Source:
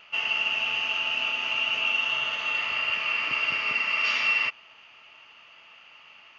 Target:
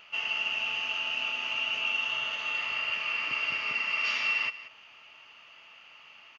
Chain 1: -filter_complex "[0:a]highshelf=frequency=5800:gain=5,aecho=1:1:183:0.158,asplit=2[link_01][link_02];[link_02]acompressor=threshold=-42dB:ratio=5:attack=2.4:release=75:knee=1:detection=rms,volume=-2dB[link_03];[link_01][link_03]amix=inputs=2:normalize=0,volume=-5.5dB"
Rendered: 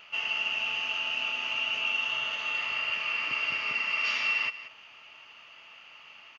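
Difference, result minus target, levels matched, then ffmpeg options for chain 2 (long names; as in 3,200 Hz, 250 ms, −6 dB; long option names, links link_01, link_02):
downward compressor: peak gain reduction −7.5 dB
-filter_complex "[0:a]highshelf=frequency=5800:gain=5,aecho=1:1:183:0.158,asplit=2[link_01][link_02];[link_02]acompressor=threshold=-51.5dB:ratio=5:attack=2.4:release=75:knee=1:detection=rms,volume=-2dB[link_03];[link_01][link_03]amix=inputs=2:normalize=0,volume=-5.5dB"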